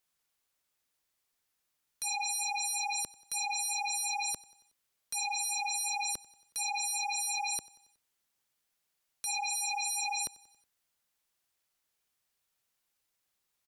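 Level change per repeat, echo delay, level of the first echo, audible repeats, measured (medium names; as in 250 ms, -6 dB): -4.5 dB, 92 ms, -23.0 dB, 3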